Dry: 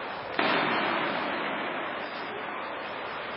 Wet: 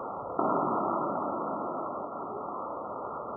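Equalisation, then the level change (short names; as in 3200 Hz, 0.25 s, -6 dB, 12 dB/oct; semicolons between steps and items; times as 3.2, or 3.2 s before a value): brick-wall FIR low-pass 1400 Hz; 0.0 dB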